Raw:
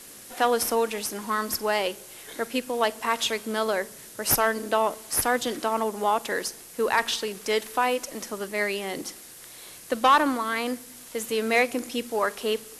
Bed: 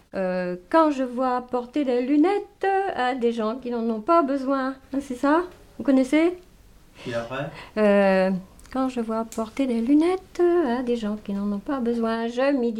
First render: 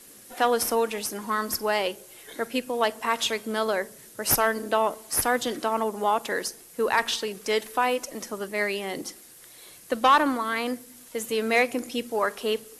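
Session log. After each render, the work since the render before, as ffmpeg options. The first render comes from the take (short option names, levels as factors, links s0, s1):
-af "afftdn=nr=6:nf=-46"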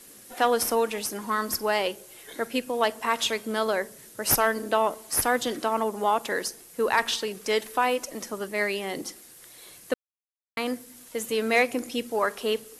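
-filter_complex "[0:a]asplit=3[s0][s1][s2];[s0]atrim=end=9.94,asetpts=PTS-STARTPTS,afade=t=out:st=9.936:d=0.004:c=hsin[s3];[s1]atrim=start=9.94:end=10.57,asetpts=PTS-STARTPTS,volume=0[s4];[s2]atrim=start=10.57,asetpts=PTS-STARTPTS,afade=t=in:d=0.004:c=hsin[s5];[s3][s4][s5]concat=n=3:v=0:a=1"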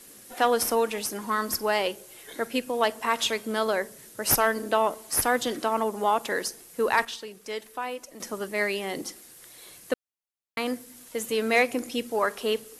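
-filter_complex "[0:a]asplit=3[s0][s1][s2];[s0]atrim=end=7.052[s3];[s1]atrim=start=7.048:end=8.202,asetpts=PTS-STARTPTS,volume=0.355[s4];[s2]atrim=start=8.198[s5];[s3][s4]acrossfade=d=0.004:c1=hsin:c2=hsin[s6];[s6][s5]acrossfade=d=0.004:c1=hsin:c2=hsin"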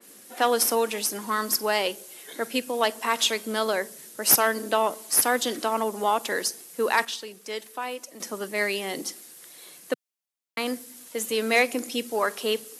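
-af "highpass=f=160:w=0.5412,highpass=f=160:w=1.3066,adynamicequalizer=threshold=0.00891:dfrequency=2700:dqfactor=0.7:tfrequency=2700:tqfactor=0.7:attack=5:release=100:ratio=0.375:range=2.5:mode=boostabove:tftype=highshelf"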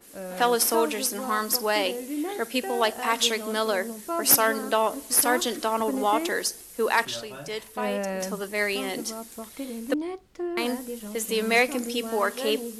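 -filter_complex "[1:a]volume=0.266[s0];[0:a][s0]amix=inputs=2:normalize=0"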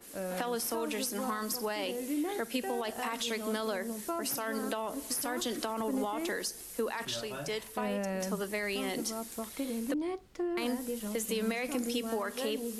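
-filter_complex "[0:a]alimiter=limit=0.133:level=0:latency=1:release=19,acrossover=split=210[s0][s1];[s1]acompressor=threshold=0.0251:ratio=6[s2];[s0][s2]amix=inputs=2:normalize=0"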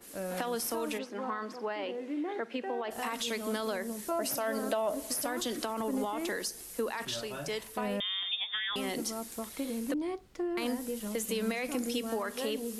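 -filter_complex "[0:a]asplit=3[s0][s1][s2];[s0]afade=t=out:st=0.97:d=0.02[s3];[s1]highpass=260,lowpass=2400,afade=t=in:st=0.97:d=0.02,afade=t=out:st=2.9:d=0.02[s4];[s2]afade=t=in:st=2.9:d=0.02[s5];[s3][s4][s5]amix=inputs=3:normalize=0,asettb=1/sr,asplit=3[s6][s7][s8];[s6]atrim=end=4.114[s9];[s7]atrim=start=4.11:end=5.27,asetpts=PTS-STARTPTS,afade=t=in:d=0.004:c=qsin,afade=t=out:st=1.156:d=0.004:c=qsin,equalizer=f=620:t=o:w=0.25:g=12[s10];[s8]atrim=start=5.266[s11];[s9][s10]acrossfade=d=0.004:c1=hsin:c2=qsin[s12];[s12][s11]acrossfade=d=0.004:c1=qsin:c2=hsin,asettb=1/sr,asplit=3[s13][s14][s15];[s13]atrim=end=8.004[s16];[s14]atrim=start=8:end=8.76,asetpts=PTS-STARTPTS,afade=t=in:d=0.004:c=qsin,afade=t=out:st=0.756:d=0.004:c=qsin,lowpass=f=3200:t=q:w=0.5098,lowpass=f=3200:t=q:w=0.6013,lowpass=f=3200:t=q:w=0.9,lowpass=f=3200:t=q:w=2.563,afreqshift=-3800[s17];[s15]atrim=start=8.756[s18];[s16][s17]acrossfade=d=0.004:c1=hsin:c2=qsin[s19];[s19][s18]acrossfade=d=0.004:c1=qsin:c2=hsin"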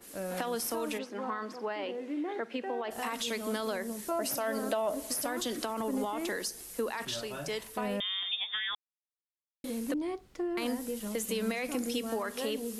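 -filter_complex "[0:a]asplit=3[s0][s1][s2];[s0]atrim=end=8.75,asetpts=PTS-STARTPTS,afade=t=out:st=8.746:d=0.004:c=hsin[s3];[s1]atrim=start=8.75:end=9.64,asetpts=PTS-STARTPTS,volume=0[s4];[s2]atrim=start=9.64,asetpts=PTS-STARTPTS,afade=t=in:d=0.004:c=hsin[s5];[s3][s4][s5]concat=n=3:v=0:a=1"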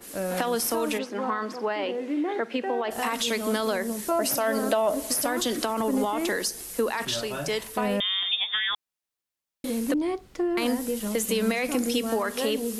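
-af "volume=2.37"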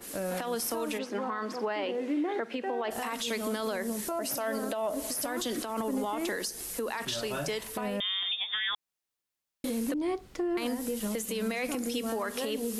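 -af "acompressor=threshold=0.0398:ratio=2,alimiter=limit=0.0708:level=0:latency=1:release=187"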